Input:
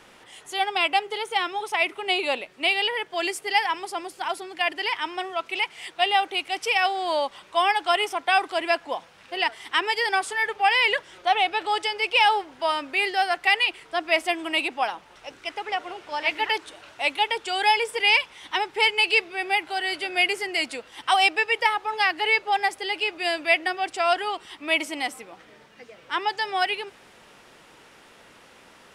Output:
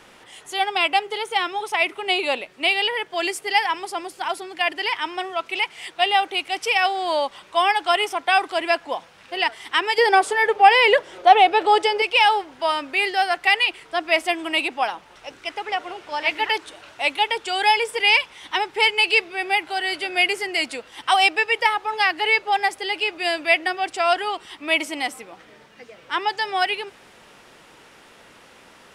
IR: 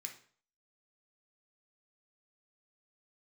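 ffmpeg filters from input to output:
-filter_complex "[0:a]asettb=1/sr,asplit=3[a][b][c];[a]atrim=end=9.984[d];[b]atrim=start=9.98:end=12.02,asetpts=PTS-STARTPTS,afade=t=in:d=0.004:c=qsin,afade=t=out:st=2.036:d=0.004:c=qsin,equalizer=f=500:w=0.79:g=10.5[e];[c]atrim=start=12.016[f];[d][e]acrossfade=d=0.004:c1=hsin:c2=qsin[g];[g][f]acrossfade=d=0.004:c1=qsin:c2=hsin,volume=2.5dB"

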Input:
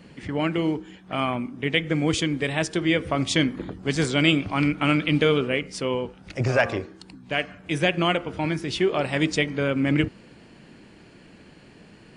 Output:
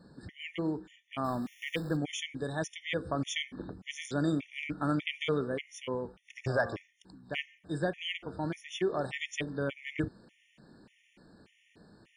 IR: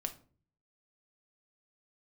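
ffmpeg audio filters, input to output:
-filter_complex "[0:a]asettb=1/sr,asplit=3[a][b][c];[a]atrim=end=1.244[d];[b]atrim=start=1.24:end=1.97,asetpts=PTS-STARTPTS,afade=t=in:d=0.004:c=qsin,afade=t=out:st=0.726:d=0.004:c=qsin,aeval=exprs='val(0)+0.5*0.0266*sgn(val(0))':c=same[e];[c]atrim=start=1.966[f];[d][e]acrossfade=d=0.004:c1=hsin:c2=qsin[g];[g][f]acrossfade=d=0.004:c1=qsin:c2=hsin,afftfilt=real='re*gt(sin(2*PI*1.7*pts/sr)*(1-2*mod(floor(b*sr/1024/1800),2)),0)':imag='im*gt(sin(2*PI*1.7*pts/sr)*(1-2*mod(floor(b*sr/1024/1800),2)),0)':win_size=1024:overlap=0.75,volume=-8dB"

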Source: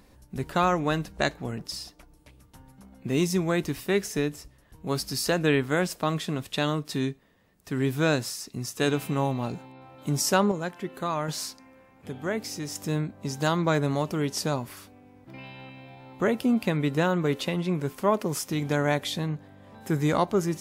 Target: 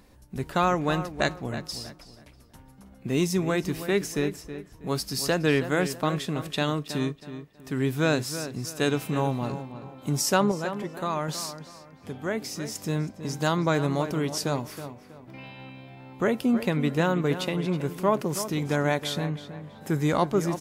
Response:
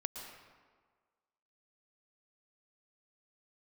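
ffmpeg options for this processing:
-filter_complex "[0:a]asplit=2[a][b];[b]adelay=322,lowpass=f=2.9k:p=1,volume=-11dB,asplit=2[c][d];[d]adelay=322,lowpass=f=2.9k:p=1,volume=0.33,asplit=2[e][f];[f]adelay=322,lowpass=f=2.9k:p=1,volume=0.33,asplit=2[g][h];[h]adelay=322,lowpass=f=2.9k:p=1,volume=0.33[i];[a][c][e][g][i]amix=inputs=5:normalize=0"

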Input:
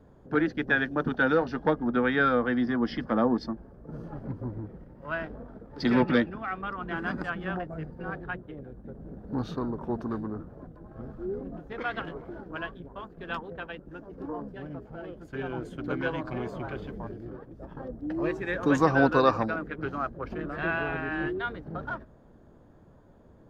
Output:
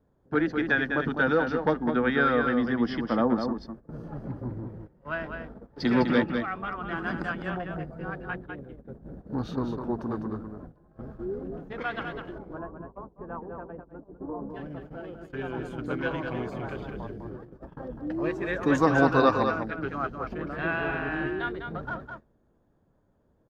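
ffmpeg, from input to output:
-filter_complex "[0:a]asettb=1/sr,asplit=3[a][b][c];[a]atrim=end=12.384[d];[b]atrim=start=12.38:end=14.5,asetpts=PTS-STARTPTS,afade=t=in:d=0.004:c=qsin,afade=t=out:st=2.116:d=0.004:c=qsin,lowpass=f=1.1k:w=0.5412,lowpass=f=1.1k:w=1.3066[e];[c]atrim=start=14.496[f];[d][e]acrossfade=d=0.004:c1=hsin:c2=qsin[g];[g][f]acrossfade=d=0.004:c1=qsin:c2=hsin,aecho=1:1:203:0.473,agate=range=-13dB:threshold=-42dB:ratio=16:detection=peak"

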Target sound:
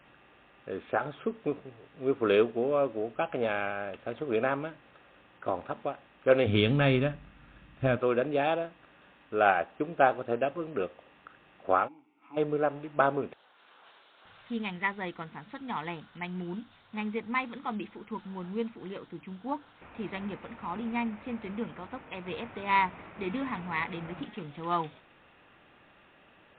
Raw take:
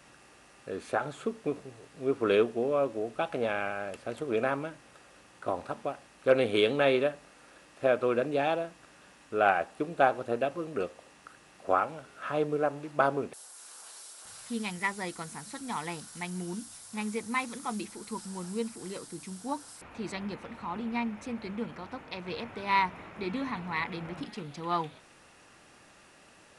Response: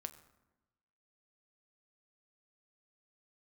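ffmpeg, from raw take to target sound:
-filter_complex "[0:a]asplit=3[a][b][c];[a]afade=t=out:st=6.46:d=0.02[d];[b]asubboost=boost=11:cutoff=140,afade=t=in:st=6.46:d=0.02,afade=t=out:st=7.96:d=0.02[e];[c]afade=t=in:st=7.96:d=0.02[f];[d][e][f]amix=inputs=3:normalize=0,asplit=3[g][h][i];[g]afade=t=out:st=11.87:d=0.02[j];[h]asplit=3[k][l][m];[k]bandpass=f=300:t=q:w=8,volume=0dB[n];[l]bandpass=f=870:t=q:w=8,volume=-6dB[o];[m]bandpass=f=2.24k:t=q:w=8,volume=-9dB[p];[n][o][p]amix=inputs=3:normalize=0,afade=t=in:st=11.87:d=0.02,afade=t=out:st=12.36:d=0.02[q];[i]afade=t=in:st=12.36:d=0.02[r];[j][q][r]amix=inputs=3:normalize=0,asplit=2[s][t];[t]aeval=exprs='sgn(val(0))*max(abs(val(0))-0.00631,0)':c=same,volume=-10.5dB[u];[s][u]amix=inputs=2:normalize=0,volume=-1dB" -ar 8000 -c:a libmp3lame -b:a 40k

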